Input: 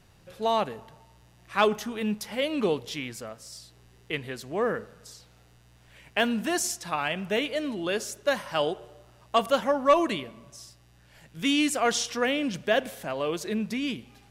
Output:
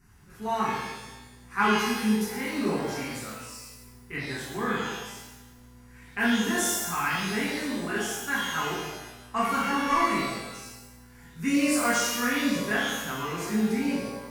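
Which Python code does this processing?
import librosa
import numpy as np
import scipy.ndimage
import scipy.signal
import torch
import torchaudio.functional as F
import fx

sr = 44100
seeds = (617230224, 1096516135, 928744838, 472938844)

y = fx.fixed_phaser(x, sr, hz=1400.0, stages=4)
y = fx.rev_shimmer(y, sr, seeds[0], rt60_s=1.0, semitones=12, shimmer_db=-8, drr_db=-8.0)
y = F.gain(torch.from_numpy(y), -4.0).numpy()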